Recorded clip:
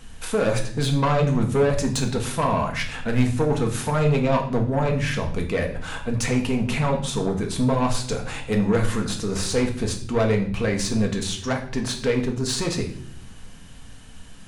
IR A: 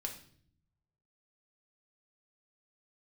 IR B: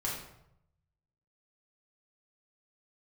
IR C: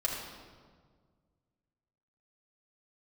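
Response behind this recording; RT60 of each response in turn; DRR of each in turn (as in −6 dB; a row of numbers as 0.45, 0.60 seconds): A; 0.55, 0.80, 1.7 seconds; 2.0, −4.5, −4.5 decibels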